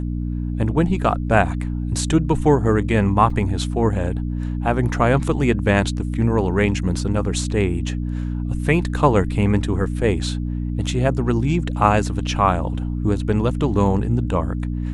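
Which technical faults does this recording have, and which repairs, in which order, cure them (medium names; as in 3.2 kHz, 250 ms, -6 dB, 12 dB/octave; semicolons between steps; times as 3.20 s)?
hum 60 Hz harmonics 5 -24 dBFS
3.30 s: dropout 3.6 ms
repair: de-hum 60 Hz, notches 5; interpolate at 3.30 s, 3.6 ms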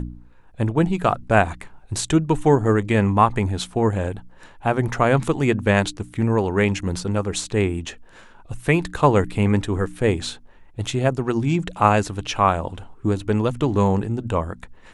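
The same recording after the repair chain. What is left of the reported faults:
nothing left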